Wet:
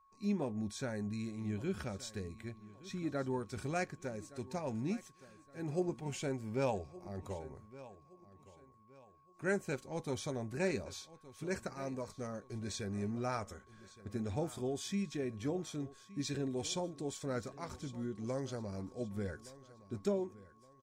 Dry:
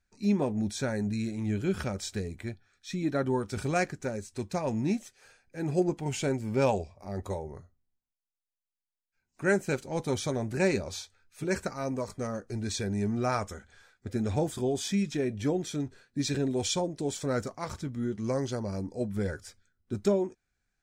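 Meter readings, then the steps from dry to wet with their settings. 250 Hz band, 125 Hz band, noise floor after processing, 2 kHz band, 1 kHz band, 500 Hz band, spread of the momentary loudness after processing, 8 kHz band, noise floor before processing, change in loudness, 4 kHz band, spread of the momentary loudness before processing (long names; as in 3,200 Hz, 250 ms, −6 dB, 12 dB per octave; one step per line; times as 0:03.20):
−8.5 dB, −8.5 dB, −64 dBFS, −8.5 dB, −8.5 dB, −8.5 dB, 12 LU, −8.5 dB, below −85 dBFS, −8.5 dB, −8.5 dB, 10 LU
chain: steady tone 1,100 Hz −57 dBFS
repeating echo 1,168 ms, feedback 36%, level −18 dB
level −8.5 dB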